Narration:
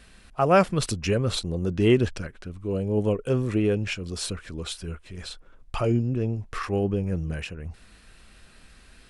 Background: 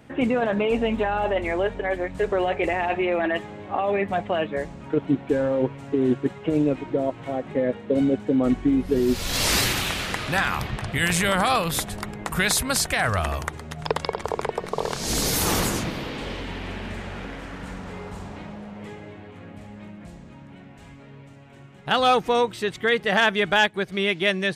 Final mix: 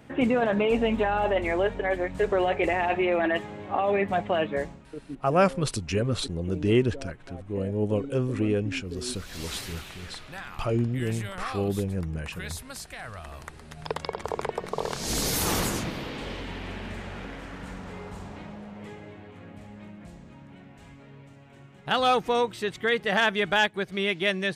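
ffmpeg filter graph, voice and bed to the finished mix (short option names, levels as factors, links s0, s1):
-filter_complex "[0:a]adelay=4850,volume=0.75[s0];[1:a]volume=4.22,afade=t=out:st=4.62:d=0.24:silence=0.158489,afade=t=in:st=13.23:d=1.14:silence=0.211349[s1];[s0][s1]amix=inputs=2:normalize=0"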